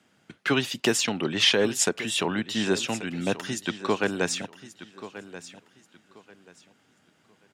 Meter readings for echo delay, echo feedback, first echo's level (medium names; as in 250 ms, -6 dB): 1133 ms, 26%, -15.0 dB